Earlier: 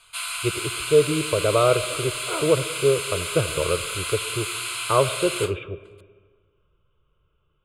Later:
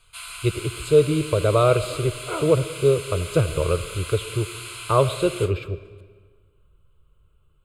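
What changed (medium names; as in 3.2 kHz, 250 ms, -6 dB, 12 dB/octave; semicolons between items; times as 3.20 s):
speech: remove brick-wall FIR low-pass 3.8 kHz; first sound -7.0 dB; master: add bass shelf 130 Hz +11 dB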